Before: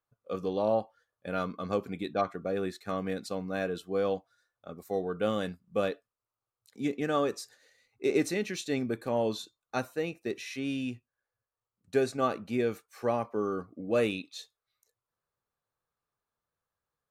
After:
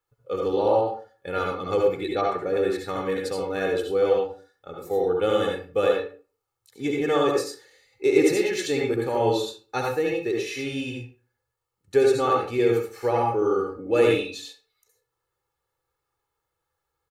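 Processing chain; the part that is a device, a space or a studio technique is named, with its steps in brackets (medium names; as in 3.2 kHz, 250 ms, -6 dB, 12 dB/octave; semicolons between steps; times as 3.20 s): microphone above a desk (comb 2.3 ms, depth 71%; reverberation RT60 0.40 s, pre-delay 64 ms, DRR -1 dB); trim +3 dB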